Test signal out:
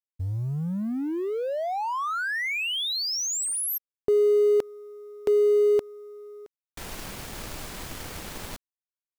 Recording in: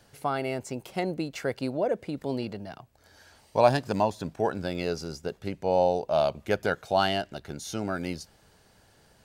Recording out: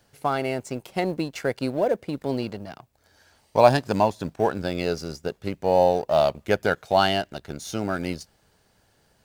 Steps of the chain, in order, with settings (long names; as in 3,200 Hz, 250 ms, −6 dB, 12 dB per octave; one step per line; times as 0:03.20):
mu-law and A-law mismatch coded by A
level +5 dB